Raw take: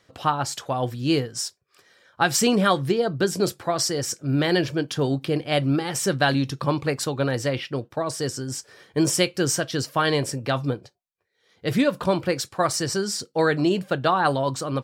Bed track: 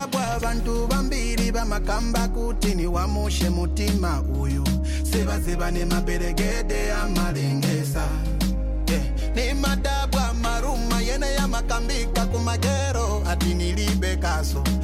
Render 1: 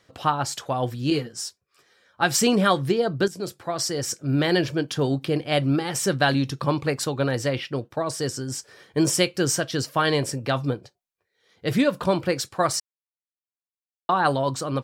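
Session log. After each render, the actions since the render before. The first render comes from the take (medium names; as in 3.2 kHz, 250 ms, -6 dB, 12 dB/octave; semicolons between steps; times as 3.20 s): 1.10–2.23 s: three-phase chorus; 3.28–4.12 s: fade in, from -12 dB; 12.80–14.09 s: mute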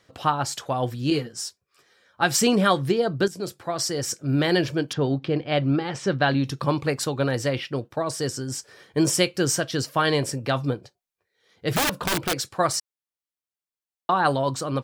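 4.93–6.44 s: distance through air 150 m; 11.75–12.34 s: integer overflow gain 17 dB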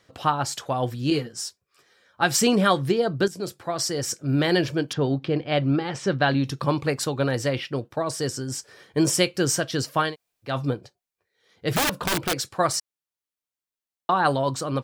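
10.08–10.50 s: room tone, crossfade 0.16 s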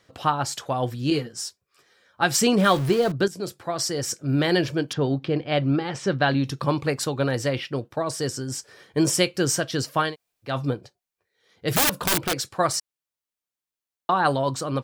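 2.58–3.12 s: jump at every zero crossing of -28.5 dBFS; 11.68–12.18 s: treble shelf 6.7 kHz +9 dB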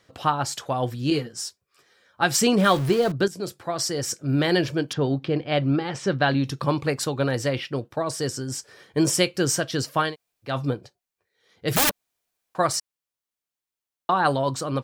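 11.91–12.55 s: room tone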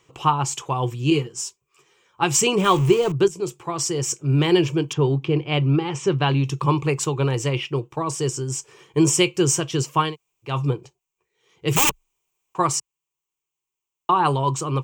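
rippled EQ curve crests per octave 0.71, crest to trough 13 dB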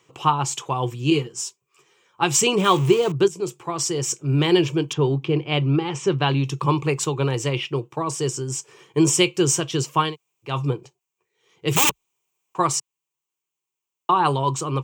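high-pass 110 Hz; dynamic bell 3.7 kHz, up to +4 dB, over -43 dBFS, Q 3.5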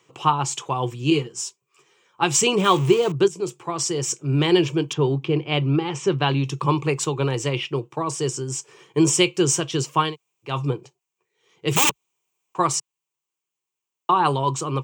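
high-pass 99 Hz; peaking EQ 13 kHz -11.5 dB 0.24 oct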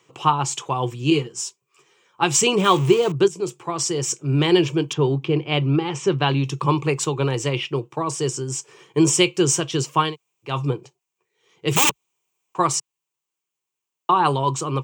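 trim +1 dB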